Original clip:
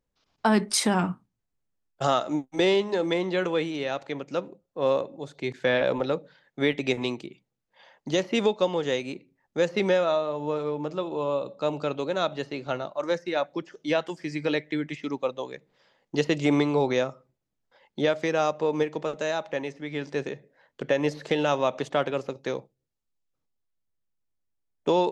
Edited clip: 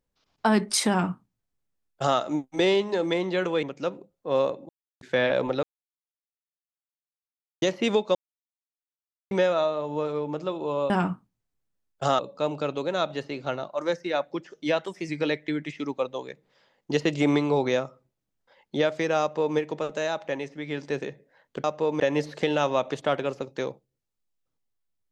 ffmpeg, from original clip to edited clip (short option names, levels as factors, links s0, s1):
-filter_complex "[0:a]asplit=14[s0][s1][s2][s3][s4][s5][s6][s7][s8][s9][s10][s11][s12][s13];[s0]atrim=end=3.632[s14];[s1]atrim=start=4.138:end=5.2,asetpts=PTS-STARTPTS,afade=t=out:st=1.058:d=0.004:c=hsin[s15];[s2]atrim=start=5.2:end=5.52,asetpts=PTS-STARTPTS,volume=0[s16];[s3]atrim=start=5.52:end=6.14,asetpts=PTS-STARTPTS,afade=t=in:d=0.004:c=hsin,afade=t=out:st=0.616:d=0.004:c=hsin[s17];[s4]atrim=start=6.14:end=8.13,asetpts=PTS-STARTPTS,volume=0[s18];[s5]atrim=start=8.13:end=8.66,asetpts=PTS-STARTPTS,afade=t=in:d=0.004:c=hsin,afade=t=out:st=0.526:d=0.004:c=hsin[s19];[s6]atrim=start=8.66:end=9.82,asetpts=PTS-STARTPTS,volume=0[s20];[s7]atrim=start=9.82:end=11.412,asetpts=PTS-STARTPTS,afade=t=in:d=0.004:c=hsin[s21];[s8]atrim=start=0.888:end=2.182[s22];[s9]atrim=start=11.408:end=14.084[s23];[s10]atrim=start=14.08:end=14.33,asetpts=PTS-STARTPTS,asetrate=48069,aresample=44100[s24];[s11]atrim=start=14.326:end=20.882[s25];[s12]atrim=start=18.448:end=18.812[s26];[s13]atrim=start=20.878[s27];[s15][s16][s17][s18][s19][s20][s21]concat=n=7:v=0:a=1[s28];[s14][s28]acrossfade=d=0.004:c1=hsin:c2=hsin[s29];[s29][s22]acrossfade=d=0.004:c1=hsin:c2=hsin[s30];[s30][s23]acrossfade=d=0.004:c1=hsin:c2=hsin[s31];[s31][s24]acrossfade=d=0.004:c1=hsin:c2=hsin[s32];[s32][s25]acrossfade=d=0.004:c1=hsin:c2=hsin[s33];[s33][s26]acrossfade=d=0.004:c1=hsin:c2=hsin[s34];[s34][s27]acrossfade=d=0.004:c1=hsin:c2=hsin"